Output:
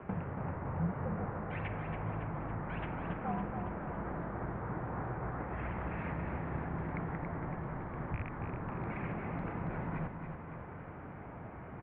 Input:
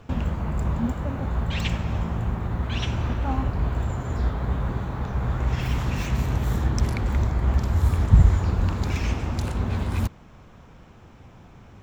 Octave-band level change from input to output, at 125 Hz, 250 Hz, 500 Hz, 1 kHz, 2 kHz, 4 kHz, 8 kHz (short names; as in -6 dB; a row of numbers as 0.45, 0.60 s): -15.5 dB, -9.5 dB, -6.5 dB, -6.0 dB, -8.0 dB, under -25 dB, n/a